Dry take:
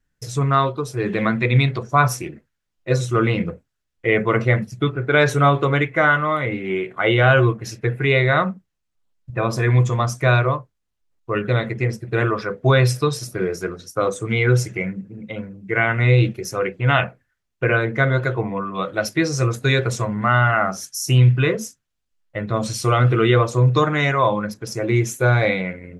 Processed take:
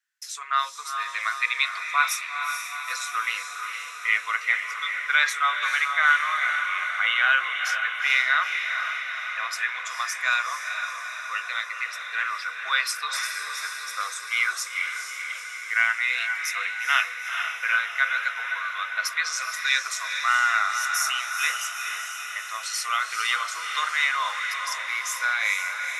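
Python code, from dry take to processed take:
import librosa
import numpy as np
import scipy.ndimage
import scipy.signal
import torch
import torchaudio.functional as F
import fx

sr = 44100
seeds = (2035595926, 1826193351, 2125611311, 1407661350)

y = scipy.signal.sosfilt(scipy.signal.butter(4, 1300.0, 'highpass', fs=sr, output='sos'), x)
y = fx.echo_diffused(y, sr, ms=457, feedback_pct=66, wet_db=-6)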